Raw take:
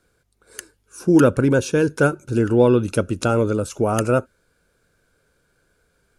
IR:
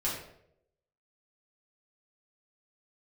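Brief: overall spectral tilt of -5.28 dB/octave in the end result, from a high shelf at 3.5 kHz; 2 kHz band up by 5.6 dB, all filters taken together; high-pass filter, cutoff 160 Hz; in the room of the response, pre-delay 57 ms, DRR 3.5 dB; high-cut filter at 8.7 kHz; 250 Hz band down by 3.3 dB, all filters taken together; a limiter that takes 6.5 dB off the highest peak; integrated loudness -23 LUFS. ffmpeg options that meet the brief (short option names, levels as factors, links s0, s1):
-filter_complex "[0:a]highpass=160,lowpass=8700,equalizer=f=250:t=o:g=-4,equalizer=f=2000:t=o:g=8,highshelf=f=3500:g=4.5,alimiter=limit=0.355:level=0:latency=1,asplit=2[s0][s1];[1:a]atrim=start_sample=2205,adelay=57[s2];[s1][s2]afir=irnorm=-1:irlink=0,volume=0.335[s3];[s0][s3]amix=inputs=2:normalize=0,volume=0.708"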